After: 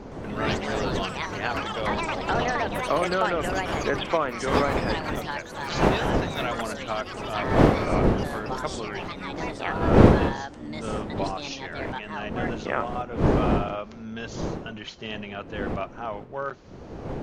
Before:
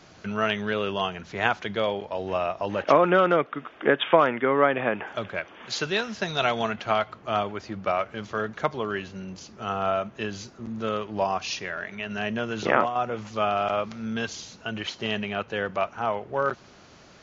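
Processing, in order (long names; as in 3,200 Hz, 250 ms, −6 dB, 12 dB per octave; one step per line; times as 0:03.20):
wind on the microphone 410 Hz −23 dBFS
delay with pitch and tempo change per echo 116 ms, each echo +5 semitones, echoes 3
level −6 dB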